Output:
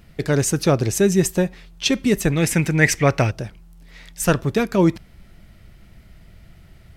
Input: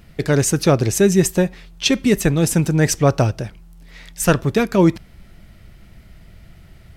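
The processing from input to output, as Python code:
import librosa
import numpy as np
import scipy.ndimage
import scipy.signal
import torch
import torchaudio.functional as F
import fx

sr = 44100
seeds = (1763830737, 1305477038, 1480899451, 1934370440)

y = fx.peak_eq(x, sr, hz=2100.0, db=15.0, octaves=0.68, at=(2.32, 3.31))
y = y * librosa.db_to_amplitude(-2.5)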